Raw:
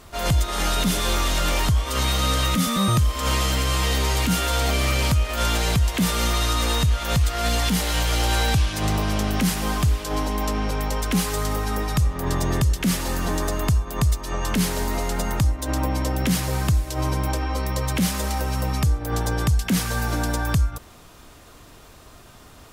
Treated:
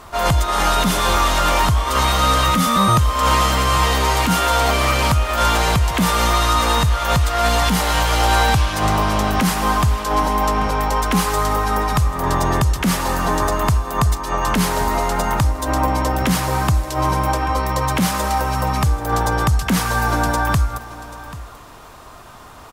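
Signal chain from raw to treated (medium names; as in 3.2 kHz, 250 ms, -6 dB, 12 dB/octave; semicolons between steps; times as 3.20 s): peaking EQ 1 kHz +10 dB 1.4 oct; delay 787 ms -16.5 dB; trim +2.5 dB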